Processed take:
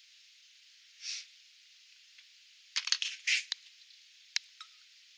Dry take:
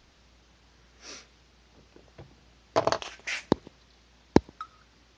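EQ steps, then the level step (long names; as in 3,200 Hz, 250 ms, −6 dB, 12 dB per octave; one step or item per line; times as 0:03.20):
inverse Chebyshev high-pass filter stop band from 680 Hz, stop band 60 dB
notch filter 5,900 Hz, Q 25
+6.5 dB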